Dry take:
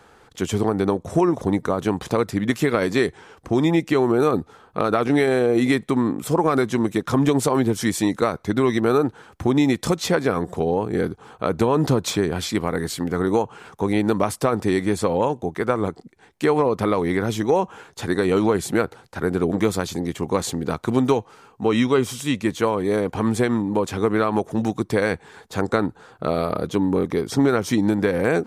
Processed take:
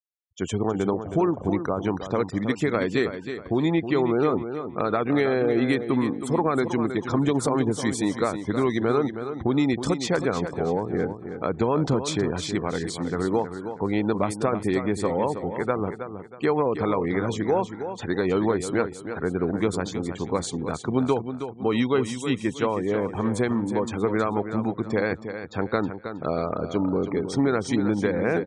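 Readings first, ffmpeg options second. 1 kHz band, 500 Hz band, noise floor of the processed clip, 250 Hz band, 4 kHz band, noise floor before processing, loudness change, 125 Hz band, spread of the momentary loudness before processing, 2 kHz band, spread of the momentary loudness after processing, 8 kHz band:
−3.5 dB, −3.5 dB, −41 dBFS, −3.5 dB, −4.5 dB, −53 dBFS, −3.5 dB, −3.5 dB, 7 LU, −3.5 dB, 6 LU, −5.0 dB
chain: -af "afftfilt=real='re*gte(hypot(re,im),0.0224)':imag='im*gte(hypot(re,im),0.0224)':win_size=1024:overlap=0.75,aresample=22050,aresample=44100,aecho=1:1:319|638|957|1276:0.335|0.107|0.0343|0.011,volume=-4dB"

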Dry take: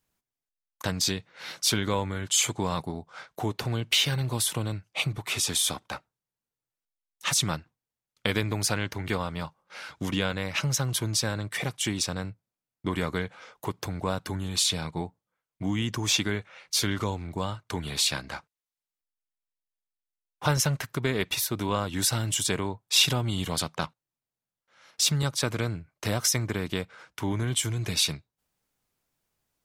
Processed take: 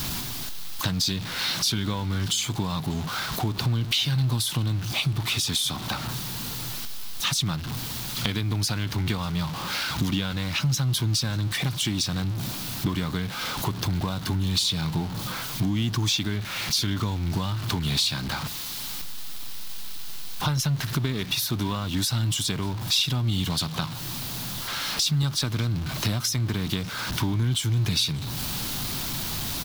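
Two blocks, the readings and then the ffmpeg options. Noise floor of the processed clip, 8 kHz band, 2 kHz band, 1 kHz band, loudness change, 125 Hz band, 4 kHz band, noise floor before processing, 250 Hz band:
−33 dBFS, −1.5 dB, +0.5 dB, +1.0 dB, +1.5 dB, +6.0 dB, +3.0 dB, below −85 dBFS, +3.5 dB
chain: -filter_complex "[0:a]aeval=exprs='val(0)+0.5*0.0251*sgn(val(0))':channel_layout=same,acompressor=threshold=-34dB:ratio=4,equalizer=frequency=125:width_type=o:width=1:gain=4,equalizer=frequency=250:width_type=o:width=1:gain=3,equalizer=frequency=500:width_type=o:width=1:gain=-9,equalizer=frequency=2000:width_type=o:width=1:gain=-5,equalizer=frequency=4000:width_type=o:width=1:gain=6,equalizer=frequency=8000:width_type=o:width=1:gain=-5,asplit=2[link_01][link_02];[link_02]aecho=0:1:592:0.0631[link_03];[link_01][link_03]amix=inputs=2:normalize=0,volume=8.5dB"

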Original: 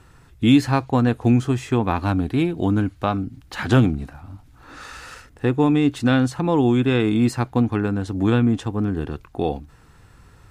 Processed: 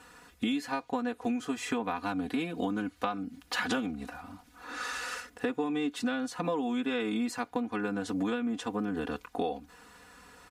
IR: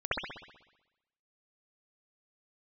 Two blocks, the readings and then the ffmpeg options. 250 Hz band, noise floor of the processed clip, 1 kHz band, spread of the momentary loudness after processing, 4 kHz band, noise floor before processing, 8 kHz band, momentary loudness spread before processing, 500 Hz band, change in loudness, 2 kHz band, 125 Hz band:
−12.5 dB, −61 dBFS, −8.5 dB, 8 LU, −7.0 dB, −51 dBFS, −4.0 dB, 13 LU, −11.0 dB, −13.0 dB, −6.0 dB, −24.5 dB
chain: -af "highpass=frequency=460:poles=1,aecho=1:1:4.1:0.94,acompressor=threshold=-28dB:ratio=10"

